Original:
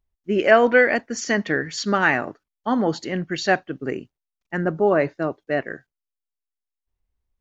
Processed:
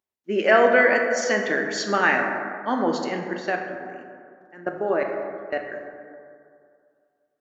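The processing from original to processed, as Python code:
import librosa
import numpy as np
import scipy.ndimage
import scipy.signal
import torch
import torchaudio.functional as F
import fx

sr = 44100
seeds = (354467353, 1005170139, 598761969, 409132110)

y = scipy.signal.sosfilt(scipy.signal.butter(2, 290.0, 'highpass', fs=sr, output='sos'), x)
y = fx.level_steps(y, sr, step_db=22, at=(3.33, 5.72))
y = fx.rev_plate(y, sr, seeds[0], rt60_s=2.3, hf_ratio=0.35, predelay_ms=0, drr_db=2.5)
y = y * librosa.db_to_amplitude(-1.5)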